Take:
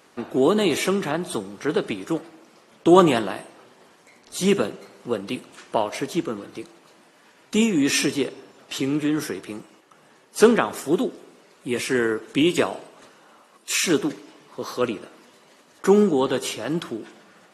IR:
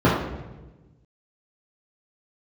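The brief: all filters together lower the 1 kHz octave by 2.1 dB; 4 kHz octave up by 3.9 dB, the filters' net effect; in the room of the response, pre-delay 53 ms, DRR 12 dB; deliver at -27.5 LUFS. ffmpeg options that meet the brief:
-filter_complex "[0:a]equalizer=f=1000:t=o:g=-3,equalizer=f=4000:t=o:g=5.5,asplit=2[s0][s1];[1:a]atrim=start_sample=2205,adelay=53[s2];[s1][s2]afir=irnorm=-1:irlink=0,volume=0.02[s3];[s0][s3]amix=inputs=2:normalize=0,volume=0.531"

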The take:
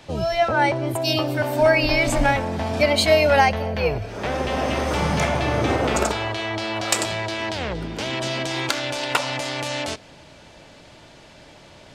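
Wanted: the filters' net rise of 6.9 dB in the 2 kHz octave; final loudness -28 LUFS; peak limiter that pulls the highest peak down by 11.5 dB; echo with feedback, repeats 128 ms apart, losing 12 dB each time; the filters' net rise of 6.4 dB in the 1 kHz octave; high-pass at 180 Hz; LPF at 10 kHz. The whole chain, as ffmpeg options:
-af "highpass=180,lowpass=10000,equalizer=f=1000:t=o:g=7,equalizer=f=2000:t=o:g=6.5,alimiter=limit=0.355:level=0:latency=1,aecho=1:1:128|256|384:0.251|0.0628|0.0157,volume=0.376"

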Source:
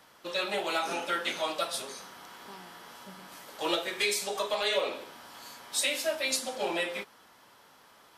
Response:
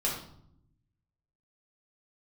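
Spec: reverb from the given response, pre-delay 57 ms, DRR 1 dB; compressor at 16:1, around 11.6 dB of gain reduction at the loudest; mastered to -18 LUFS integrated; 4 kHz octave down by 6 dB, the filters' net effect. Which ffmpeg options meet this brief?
-filter_complex "[0:a]equalizer=f=4000:t=o:g=-7.5,acompressor=threshold=0.0158:ratio=16,asplit=2[s0][s1];[1:a]atrim=start_sample=2205,adelay=57[s2];[s1][s2]afir=irnorm=-1:irlink=0,volume=0.398[s3];[s0][s3]amix=inputs=2:normalize=0,volume=11.2"

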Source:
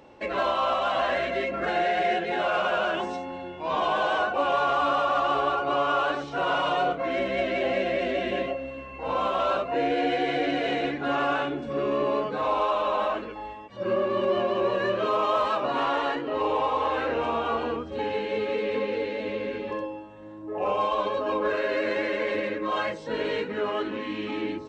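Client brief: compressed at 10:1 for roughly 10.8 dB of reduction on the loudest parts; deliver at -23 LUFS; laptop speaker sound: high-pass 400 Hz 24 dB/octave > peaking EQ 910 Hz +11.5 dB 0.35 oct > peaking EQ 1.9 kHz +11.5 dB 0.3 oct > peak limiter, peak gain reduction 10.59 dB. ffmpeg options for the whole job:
-af "acompressor=threshold=0.0251:ratio=10,highpass=f=400:w=0.5412,highpass=f=400:w=1.3066,equalizer=f=910:t=o:w=0.35:g=11.5,equalizer=f=1900:t=o:w=0.3:g=11.5,volume=5.62,alimiter=limit=0.168:level=0:latency=1"

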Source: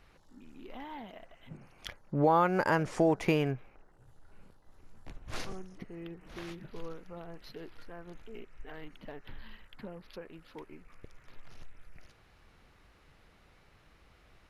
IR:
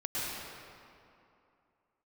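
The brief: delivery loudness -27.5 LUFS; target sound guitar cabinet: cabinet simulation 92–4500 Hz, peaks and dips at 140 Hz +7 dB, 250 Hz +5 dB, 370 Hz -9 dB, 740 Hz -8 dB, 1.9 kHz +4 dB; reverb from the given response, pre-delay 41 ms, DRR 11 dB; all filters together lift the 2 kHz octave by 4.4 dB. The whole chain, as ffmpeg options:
-filter_complex "[0:a]equalizer=f=2000:t=o:g=4,asplit=2[s0][s1];[1:a]atrim=start_sample=2205,adelay=41[s2];[s1][s2]afir=irnorm=-1:irlink=0,volume=0.133[s3];[s0][s3]amix=inputs=2:normalize=0,highpass=92,equalizer=f=140:t=q:w=4:g=7,equalizer=f=250:t=q:w=4:g=5,equalizer=f=370:t=q:w=4:g=-9,equalizer=f=740:t=q:w=4:g=-8,equalizer=f=1900:t=q:w=4:g=4,lowpass=f=4500:w=0.5412,lowpass=f=4500:w=1.3066,volume=1.88"

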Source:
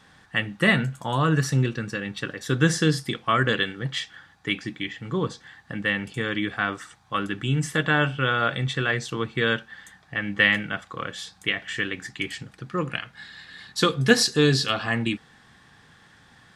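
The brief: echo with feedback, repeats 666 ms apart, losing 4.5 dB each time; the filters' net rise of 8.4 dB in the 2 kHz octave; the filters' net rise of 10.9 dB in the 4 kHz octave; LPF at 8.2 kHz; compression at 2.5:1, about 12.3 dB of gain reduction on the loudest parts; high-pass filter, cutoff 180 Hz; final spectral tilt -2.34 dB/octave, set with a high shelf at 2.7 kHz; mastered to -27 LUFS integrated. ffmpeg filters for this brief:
-af "highpass=180,lowpass=8200,equalizer=f=2000:t=o:g=6,highshelf=f=2700:g=7.5,equalizer=f=4000:t=o:g=6,acompressor=threshold=0.0562:ratio=2.5,aecho=1:1:666|1332|1998|2664|3330|3996|4662|5328|5994:0.596|0.357|0.214|0.129|0.0772|0.0463|0.0278|0.0167|0.01,volume=0.75"

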